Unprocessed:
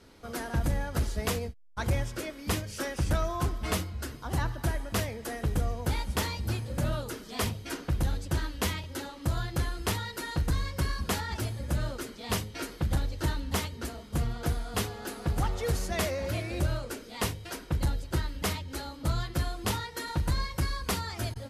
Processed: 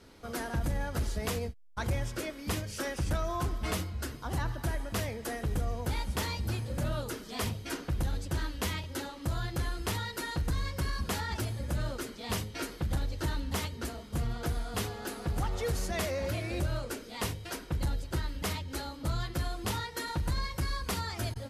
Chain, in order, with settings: limiter -24 dBFS, peak gain reduction 4 dB

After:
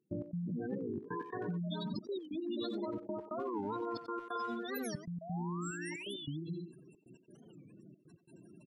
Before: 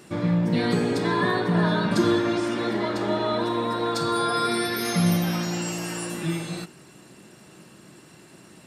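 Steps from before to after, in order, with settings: 1.64–2.85 resonant high shelf 2600 Hz +6.5 dB, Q 1.5; spectral gate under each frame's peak -10 dB strong; 4.35–5.08 comb 4.8 ms, depth 91%; 5.7–6.2 dynamic EQ 170 Hz, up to -7 dB, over -46 dBFS, Q 1.3; compressor 12:1, threshold -29 dBFS, peak gain reduction 15 dB; step gate ".x.xxxxxx" 136 bpm -24 dB; 5.21–6.28 painted sound rise 630–3900 Hz -41 dBFS; speakerphone echo 90 ms, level -8 dB; record warp 45 rpm, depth 250 cents; gain -6 dB

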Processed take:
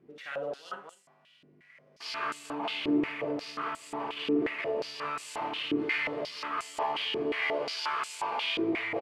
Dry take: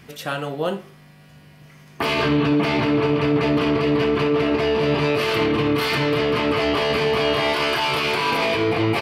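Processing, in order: CVSD 64 kbps; loudspeakers at several distances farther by 19 m -2 dB, 85 m -5 dB; stepped band-pass 5.6 Hz 350–7700 Hz; gain -3 dB

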